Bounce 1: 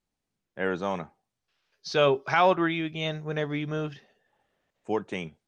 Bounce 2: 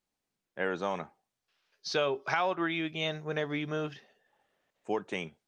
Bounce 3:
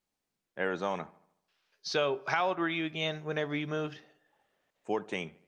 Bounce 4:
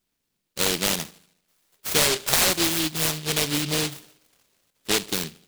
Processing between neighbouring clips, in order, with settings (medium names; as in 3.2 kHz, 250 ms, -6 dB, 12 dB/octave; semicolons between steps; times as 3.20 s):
bass shelf 190 Hz -9.5 dB; compression 5:1, threshold -26 dBFS, peak gain reduction 9 dB
feedback echo behind a low-pass 75 ms, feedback 51%, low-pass 1.9 kHz, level -21 dB
delay time shaken by noise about 3.4 kHz, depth 0.4 ms; trim +8.5 dB